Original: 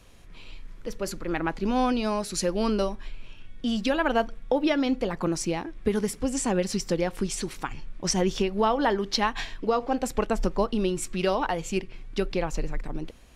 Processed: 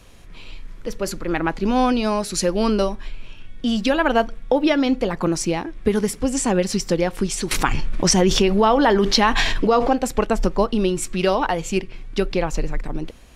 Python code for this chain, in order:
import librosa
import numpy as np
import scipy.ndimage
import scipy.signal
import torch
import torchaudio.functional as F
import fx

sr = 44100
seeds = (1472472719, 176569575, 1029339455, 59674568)

y = fx.env_flatten(x, sr, amount_pct=70, at=(7.51, 9.93))
y = y * librosa.db_to_amplitude(6.0)